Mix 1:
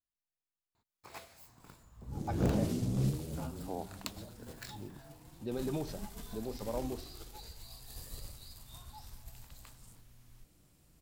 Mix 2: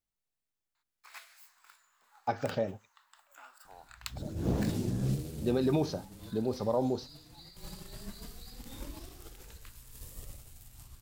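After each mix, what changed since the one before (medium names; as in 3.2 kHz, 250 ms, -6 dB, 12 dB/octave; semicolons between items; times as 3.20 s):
speech +8.5 dB; first sound: add resonant high-pass 1.5 kHz, resonance Q 1.6; second sound: entry +2.05 s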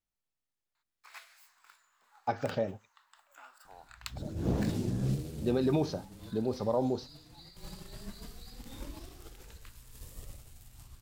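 master: add treble shelf 8.4 kHz -5.5 dB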